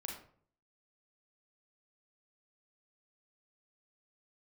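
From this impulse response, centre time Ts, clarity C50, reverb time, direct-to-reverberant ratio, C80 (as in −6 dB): 34 ms, 4.5 dB, 0.55 s, −0.5 dB, 8.5 dB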